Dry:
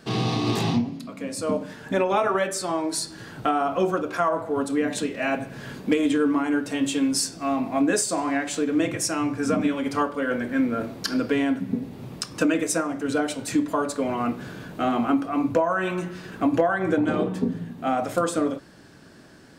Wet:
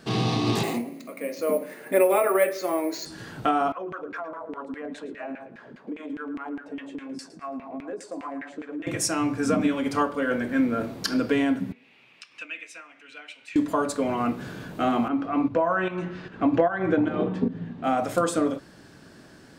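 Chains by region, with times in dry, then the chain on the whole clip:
0:00.63–0:03.06: loudspeaker in its box 340–4,600 Hz, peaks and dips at 360 Hz +5 dB, 550 Hz +6 dB, 910 Hz −5 dB, 1,500 Hz −5 dB, 2,100 Hz +8 dB, 3,300 Hz −9 dB + bad sample-rate conversion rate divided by 4×, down none, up hold
0:03.72–0:08.87: auto-filter band-pass saw down 4.9 Hz 200–2,300 Hz + downward compressor, threshold −30 dBFS + repeating echo 111 ms, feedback 28%, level −15 dB
0:11.72–0:13.56: resonant band-pass 2,500 Hz, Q 4.4 + upward compression, threshold −48 dBFS
0:15.08–0:17.84: low-pass filter 3,500 Hz + fake sidechain pumping 150 BPM, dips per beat 1, −10 dB, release 245 ms
whole clip: no processing

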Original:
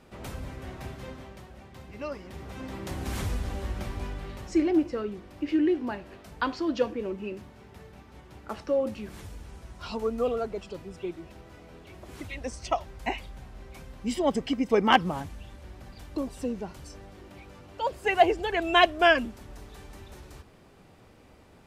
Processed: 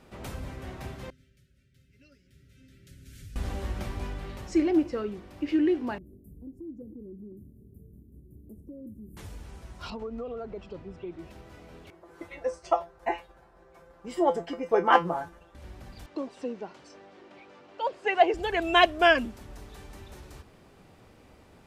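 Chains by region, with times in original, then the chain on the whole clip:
0:01.10–0:03.36: Chebyshev band-stop filter 640–1,300 Hz, order 5 + guitar amp tone stack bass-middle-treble 6-0-2 + comb filter 7.3 ms, depth 49%
0:05.98–0:09.17: inverse Chebyshev band-stop filter 1,200–4,200 Hz, stop band 70 dB + downward compressor 2 to 1, threshold −44 dBFS + parametric band 950 Hz −3.5 dB 2.7 octaves
0:09.90–0:11.19: downward compressor, threshold −32 dBFS + head-to-tape spacing loss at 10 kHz 21 dB
0:11.90–0:15.55: noise gate −42 dBFS, range −6 dB + flat-topped bell 750 Hz +12.5 dB 2.7 octaves + tuned comb filter 170 Hz, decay 0.19 s, mix 90%
0:16.06–0:18.34: high-pass filter 300 Hz + high-frequency loss of the air 110 metres
whole clip: no processing

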